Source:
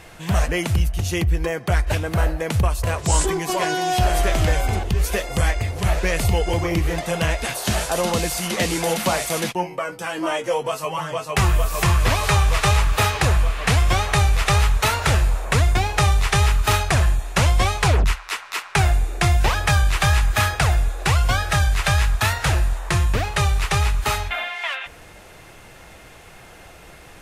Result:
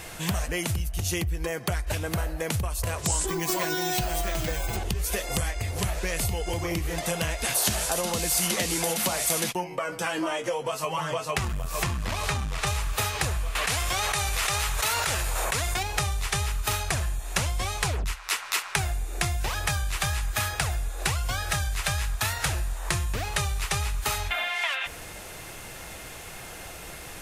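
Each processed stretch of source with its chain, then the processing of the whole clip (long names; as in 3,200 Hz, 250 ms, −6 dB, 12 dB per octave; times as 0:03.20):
0:03.29–0:04.77: comb filter 6 ms, depth 85% + bad sample-rate conversion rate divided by 2×, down filtered, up hold
0:09.64–0:12.67: high-shelf EQ 8,300 Hz −11 dB + single-tap delay 133 ms −23 dB + saturating transformer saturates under 120 Hz
0:13.55–0:15.83: low-shelf EQ 310 Hz −10.5 dB + envelope flattener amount 100%
whole clip: downward compressor 10 to 1, threshold −27 dBFS; high-shelf EQ 4,900 Hz +10 dB; level +1.5 dB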